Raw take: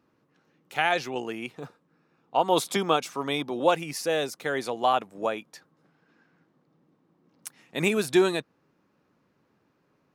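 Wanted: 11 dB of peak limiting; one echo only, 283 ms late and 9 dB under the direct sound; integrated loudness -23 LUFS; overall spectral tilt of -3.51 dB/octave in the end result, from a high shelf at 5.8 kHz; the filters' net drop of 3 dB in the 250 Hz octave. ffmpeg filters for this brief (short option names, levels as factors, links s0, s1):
-af "equalizer=f=250:t=o:g=-5,highshelf=f=5800:g=8.5,alimiter=limit=0.112:level=0:latency=1,aecho=1:1:283:0.355,volume=2.66"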